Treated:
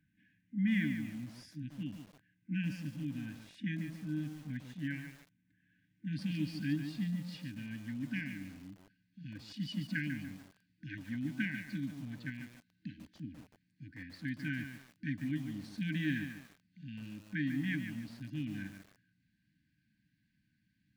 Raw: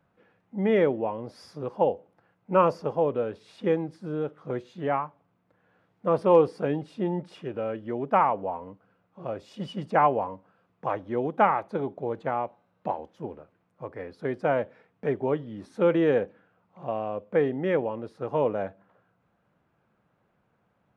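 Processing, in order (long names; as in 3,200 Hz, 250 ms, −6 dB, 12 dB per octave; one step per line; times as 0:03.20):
parametric band 4,500 Hz −4.5 dB 0.41 octaves, from 0:06.13 +11 dB
brick-wall band-stop 320–1,500 Hz
feedback echo at a low word length 145 ms, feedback 35%, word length 8 bits, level −8 dB
level −3.5 dB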